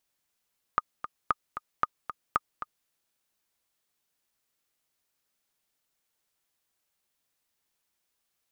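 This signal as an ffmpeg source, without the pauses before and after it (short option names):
-f lavfi -i "aevalsrc='pow(10,(-10-11*gte(mod(t,2*60/228),60/228))/20)*sin(2*PI*1230*mod(t,60/228))*exp(-6.91*mod(t,60/228)/0.03)':d=2.1:s=44100"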